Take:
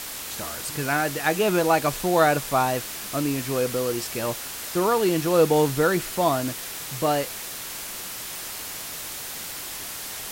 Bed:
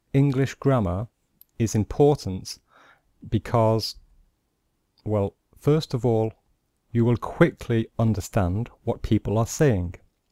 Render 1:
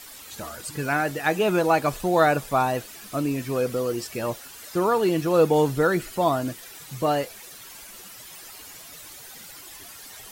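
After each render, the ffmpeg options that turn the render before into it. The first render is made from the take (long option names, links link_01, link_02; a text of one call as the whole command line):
ffmpeg -i in.wav -af "afftdn=noise_reduction=12:noise_floor=-35" out.wav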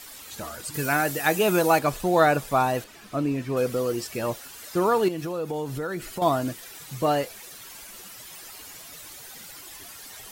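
ffmpeg -i in.wav -filter_complex "[0:a]asettb=1/sr,asplit=3[link_01][link_02][link_03];[link_01]atrim=end=0.744[link_04];[link_02]atrim=start=0.74:end=1.79,asetpts=PTS-STARTPTS,afade=type=in:duration=0.004:curve=qsin,afade=type=out:start_time=1.046:duration=0.004:curve=qsin,highshelf=frequency=6400:gain=12[link_05];[link_03]atrim=start=1.786[link_06];[link_04][link_05]acrossfade=duration=0.004:curve1=hsin:curve2=qsin[link_07];[link_07][link_06]acrossfade=duration=0.004:curve1=qsin:curve2=hsin,asettb=1/sr,asplit=3[link_08][link_09][link_10];[link_08]atrim=end=2.844[link_11];[link_09]atrim=start=2.84:end=3.57,asetpts=PTS-STARTPTS,afade=type=in:duration=0.004:curve=qsin,afade=type=out:start_time=0.726:duration=0.004:curve=qsin,lowpass=frequency=2700:poles=1[link_12];[link_10]atrim=start=3.566[link_13];[link_11][link_12]acrossfade=duration=0.004:curve1=hsin:curve2=qsin[link_14];[link_14][link_13]acrossfade=duration=0.004:curve1=qsin:curve2=hsin,asettb=1/sr,asplit=3[link_15][link_16][link_17];[link_15]atrim=end=5.084[link_18];[link_16]atrim=start=5.08:end=6.22,asetpts=PTS-STARTPTS,afade=type=in:duration=0.004:curve=qsin,afade=type=out:start_time=1.136:duration=0.004:curve=qsin,acompressor=threshold=-28dB:ratio=4:attack=3.2:release=140:knee=1:detection=peak[link_19];[link_17]atrim=start=6.216[link_20];[link_18][link_19]acrossfade=duration=0.004:curve1=hsin:curve2=qsin[link_21];[link_21][link_20]acrossfade=duration=0.004:curve1=qsin:curve2=hsin" out.wav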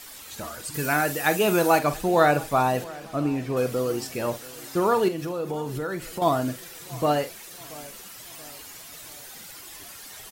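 ffmpeg -i in.wav -filter_complex "[0:a]asplit=2[link_01][link_02];[link_02]adelay=47,volume=-12dB[link_03];[link_01][link_03]amix=inputs=2:normalize=0,asplit=2[link_04][link_05];[link_05]adelay=681,lowpass=frequency=2000:poles=1,volume=-20dB,asplit=2[link_06][link_07];[link_07]adelay=681,lowpass=frequency=2000:poles=1,volume=0.48,asplit=2[link_08][link_09];[link_09]adelay=681,lowpass=frequency=2000:poles=1,volume=0.48,asplit=2[link_10][link_11];[link_11]adelay=681,lowpass=frequency=2000:poles=1,volume=0.48[link_12];[link_04][link_06][link_08][link_10][link_12]amix=inputs=5:normalize=0" out.wav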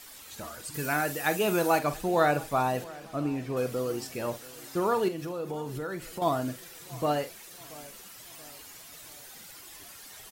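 ffmpeg -i in.wav -af "volume=-5dB" out.wav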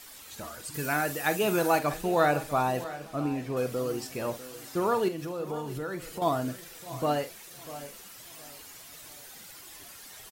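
ffmpeg -i in.wav -af "aecho=1:1:646:0.158" out.wav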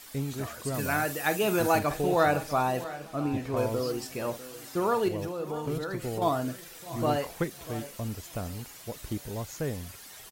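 ffmpeg -i in.wav -i bed.wav -filter_complex "[1:a]volume=-13dB[link_01];[0:a][link_01]amix=inputs=2:normalize=0" out.wav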